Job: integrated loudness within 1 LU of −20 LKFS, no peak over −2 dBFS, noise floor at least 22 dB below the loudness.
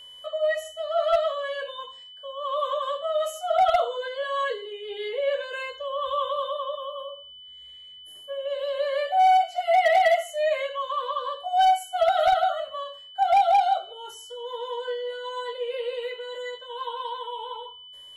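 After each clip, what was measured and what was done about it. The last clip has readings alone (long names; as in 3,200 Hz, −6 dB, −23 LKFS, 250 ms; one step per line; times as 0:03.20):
share of clipped samples 0.8%; peaks flattened at −14.0 dBFS; interfering tone 3,000 Hz; level of the tone −43 dBFS; integrated loudness −25.5 LKFS; sample peak −14.0 dBFS; target loudness −20.0 LKFS
→ clipped peaks rebuilt −14 dBFS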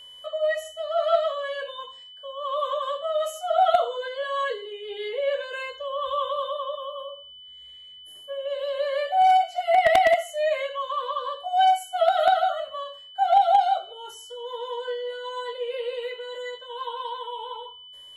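share of clipped samples 0.0%; interfering tone 3,000 Hz; level of the tone −43 dBFS
→ notch filter 3,000 Hz, Q 30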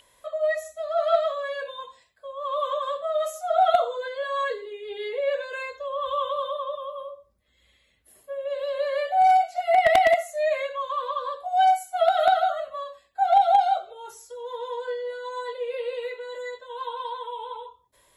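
interfering tone none found; integrated loudness −25.0 LKFS; sample peak −5.0 dBFS; target loudness −20.0 LKFS
→ level +5 dB
brickwall limiter −2 dBFS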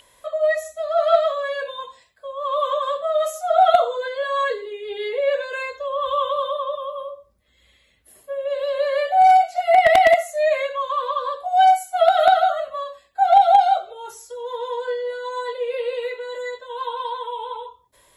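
integrated loudness −20.0 LKFS; sample peak −2.0 dBFS; background noise floor −60 dBFS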